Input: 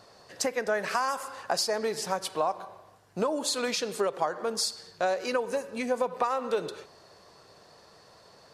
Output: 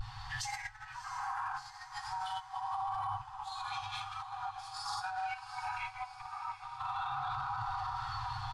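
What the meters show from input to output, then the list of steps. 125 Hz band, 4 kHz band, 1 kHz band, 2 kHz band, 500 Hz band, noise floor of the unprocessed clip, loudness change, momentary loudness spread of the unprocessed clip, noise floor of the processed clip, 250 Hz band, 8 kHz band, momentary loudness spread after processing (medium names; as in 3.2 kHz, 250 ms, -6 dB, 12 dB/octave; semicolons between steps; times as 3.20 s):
+1.0 dB, -10.5 dB, -3.0 dB, -6.5 dB, under -30 dB, -56 dBFS, -9.5 dB, 5 LU, -51 dBFS, under -25 dB, -15.0 dB, 6 LU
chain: comb 6.3 ms, depth 39%; plate-style reverb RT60 3.3 s, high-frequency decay 0.7×, DRR -7.5 dB; vibrato 0.43 Hz 29 cents; compressor with a negative ratio -30 dBFS, ratio -0.5; spectral noise reduction 8 dB; RIAA curve playback; echo that smears into a reverb 696 ms, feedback 50%, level -15.5 dB; FFT band-reject 130–740 Hz; peak limiter -32.5 dBFS, peak gain reduction 17.5 dB; peaking EQ 3.3 kHz +8.5 dB 0.38 oct; trim +3 dB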